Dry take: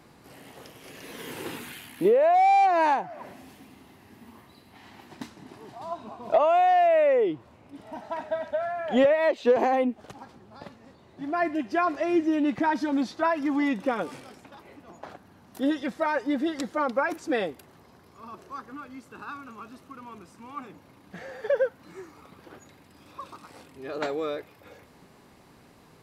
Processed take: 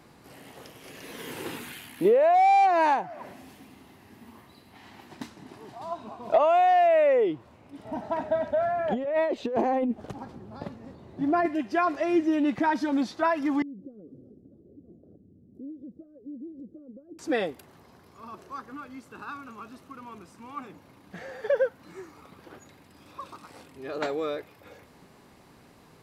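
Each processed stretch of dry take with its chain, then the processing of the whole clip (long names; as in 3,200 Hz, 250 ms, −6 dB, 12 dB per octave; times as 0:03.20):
0:07.85–0:11.46: tilt shelving filter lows +5.5 dB, about 760 Hz + compressor whose output falls as the input rises −25 dBFS
0:13.62–0:17.19: downward compressor 3 to 1, threshold −41 dBFS + inverse Chebyshev low-pass filter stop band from 850 Hz
whole clip: no processing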